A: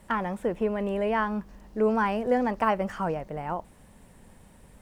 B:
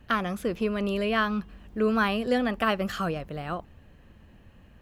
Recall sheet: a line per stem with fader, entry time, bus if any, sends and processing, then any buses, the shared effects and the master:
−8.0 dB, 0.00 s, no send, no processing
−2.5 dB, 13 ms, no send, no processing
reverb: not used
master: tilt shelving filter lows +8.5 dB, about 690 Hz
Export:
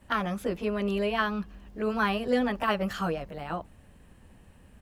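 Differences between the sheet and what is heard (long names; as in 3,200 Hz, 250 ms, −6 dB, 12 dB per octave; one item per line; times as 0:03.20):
stem B: polarity flipped
master: missing tilt shelving filter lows +8.5 dB, about 690 Hz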